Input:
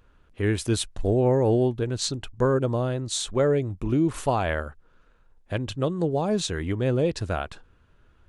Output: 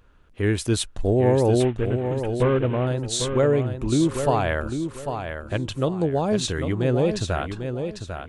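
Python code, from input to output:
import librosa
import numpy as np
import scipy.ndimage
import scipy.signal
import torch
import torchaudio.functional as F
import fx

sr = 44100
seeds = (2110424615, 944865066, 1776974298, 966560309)

p1 = fx.cvsd(x, sr, bps=16000, at=(1.6, 2.87))
p2 = p1 + fx.echo_feedback(p1, sr, ms=797, feedback_pct=28, wet_db=-7.5, dry=0)
y = F.gain(torch.from_numpy(p2), 2.0).numpy()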